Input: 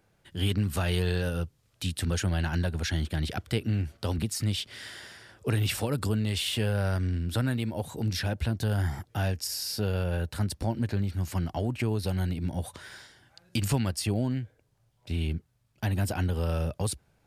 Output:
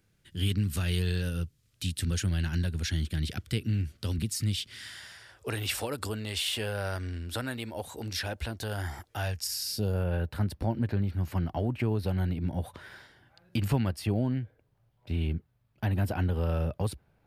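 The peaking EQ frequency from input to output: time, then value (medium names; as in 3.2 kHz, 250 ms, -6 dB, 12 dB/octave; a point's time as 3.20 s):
peaking EQ -13 dB 1.6 oct
4.63 s 760 Hz
5.55 s 150 Hz
9.13 s 150 Hz
9.74 s 940 Hz
10.10 s 7.4 kHz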